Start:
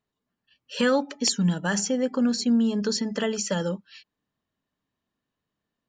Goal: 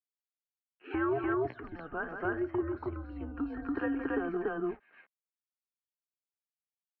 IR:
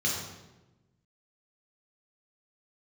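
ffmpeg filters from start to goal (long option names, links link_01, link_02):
-af "aeval=exprs='val(0)*gte(abs(val(0)),0.00355)':channel_layout=same,aecho=1:1:139.9|239.1:0.282|0.891,acompressor=threshold=-25dB:ratio=6,highpass=frequency=380:width_type=q:width=0.5412,highpass=frequency=380:width_type=q:width=1.307,lowpass=frequency=2100:width_type=q:width=0.5176,lowpass=frequency=2100:width_type=q:width=0.7071,lowpass=frequency=2100:width_type=q:width=1.932,afreqshift=-160,atempo=0.84"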